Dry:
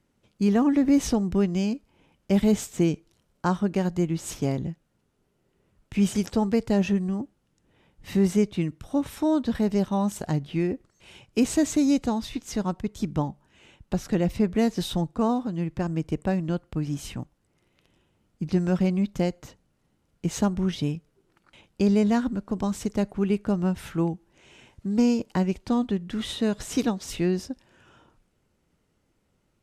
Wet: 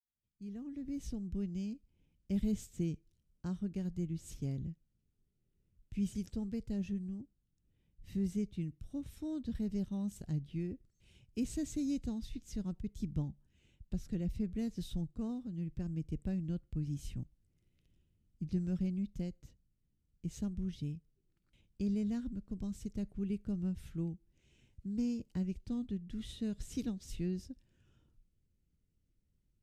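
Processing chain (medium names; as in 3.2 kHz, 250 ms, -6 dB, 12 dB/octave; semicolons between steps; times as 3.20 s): fade-in on the opening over 2.66 s; amplifier tone stack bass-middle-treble 10-0-1; gain riding within 4 dB 2 s; trim +4 dB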